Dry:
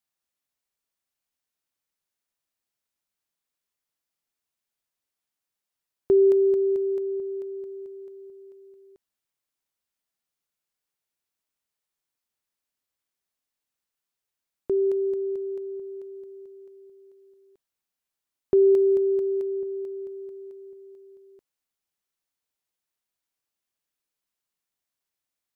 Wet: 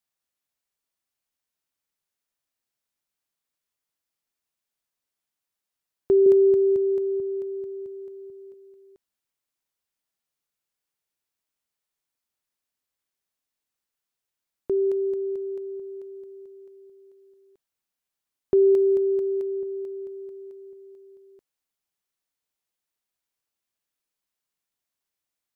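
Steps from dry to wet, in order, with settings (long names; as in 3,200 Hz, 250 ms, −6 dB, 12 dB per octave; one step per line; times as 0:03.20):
0:06.26–0:08.54: parametric band 100 Hz +11 dB 2.6 octaves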